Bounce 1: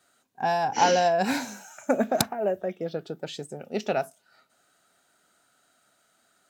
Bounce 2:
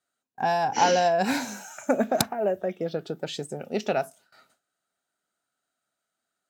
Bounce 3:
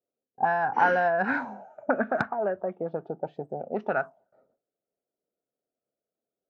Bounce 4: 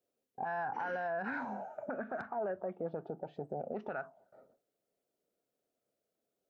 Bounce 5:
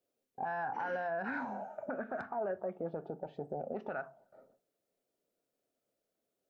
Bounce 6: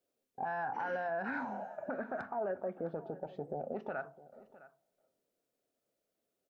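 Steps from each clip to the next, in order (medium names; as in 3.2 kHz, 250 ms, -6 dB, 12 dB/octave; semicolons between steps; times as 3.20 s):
gate with hold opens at -53 dBFS; in parallel at -0.5 dB: compression, threshold -33 dBFS, peak gain reduction 16.5 dB; on the sum: trim -1.5 dB
touch-sensitive low-pass 480–1500 Hz up, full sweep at -21 dBFS; trim -4.5 dB
compression 4:1, threshold -36 dBFS, peak gain reduction 16 dB; peak limiter -32.5 dBFS, peak gain reduction 10.5 dB; trim +3.5 dB
reverberation RT60 0.35 s, pre-delay 3 ms, DRR 14 dB
delay 659 ms -18.5 dB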